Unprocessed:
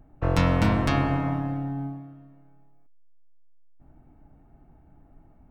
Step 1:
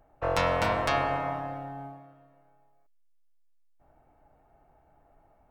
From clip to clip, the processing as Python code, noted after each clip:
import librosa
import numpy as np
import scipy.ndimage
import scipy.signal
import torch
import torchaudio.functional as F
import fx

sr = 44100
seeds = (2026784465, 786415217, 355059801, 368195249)

y = fx.low_shelf_res(x, sr, hz=380.0, db=-11.5, q=1.5)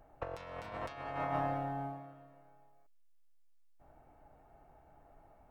y = fx.over_compress(x, sr, threshold_db=-33.0, ratio=-0.5)
y = y * 10.0 ** (-4.5 / 20.0)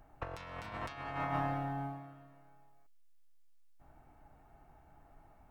y = fx.peak_eq(x, sr, hz=540.0, db=-8.5, octaves=1.0)
y = y * 10.0 ** (3.0 / 20.0)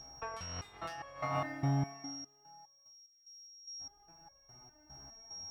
y = x + 10.0 ** (-49.0 / 20.0) * np.sin(2.0 * np.pi * 5600.0 * np.arange(len(x)) / sr)
y = scipy.signal.sosfilt(scipy.signal.butter(2, 40.0, 'highpass', fs=sr, output='sos'), y)
y = fx.resonator_held(y, sr, hz=4.9, low_hz=68.0, high_hz=550.0)
y = y * 10.0 ** (12.5 / 20.0)